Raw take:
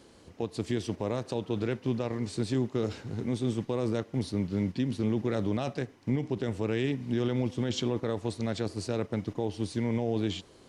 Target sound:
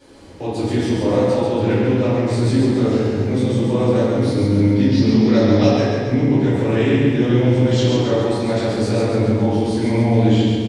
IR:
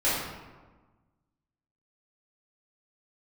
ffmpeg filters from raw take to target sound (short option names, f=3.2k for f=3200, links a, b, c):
-filter_complex "[0:a]asettb=1/sr,asplit=3[a][b][c];[a]atrim=end=4.824[d];[b]atrim=start=4.82:end=5.67,asetpts=PTS-STARTPTS,afade=t=in:d=0.004:c=qsin,afade=t=out:st=0.846:d=0.004:c=qsin,lowpass=f=5.1k:t=q:w=6.6[e];[c]atrim=start=5.666[f];[d][e]acrossfade=d=0.004:c1=hsin:c2=qsin[g];[g][f]acrossfade=d=0.004:c1=qsin:c2=hsin,aecho=1:1:137|274|411|548|685|822|959:0.631|0.341|0.184|0.0994|0.0537|0.029|0.0156[h];[1:a]atrim=start_sample=2205[i];[h][i]afir=irnorm=-1:irlink=0,volume=-1.5dB"